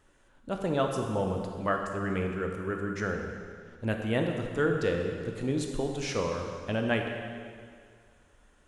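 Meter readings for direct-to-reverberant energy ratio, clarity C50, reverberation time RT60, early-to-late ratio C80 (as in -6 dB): 2.0 dB, 3.5 dB, 2.0 s, 5.0 dB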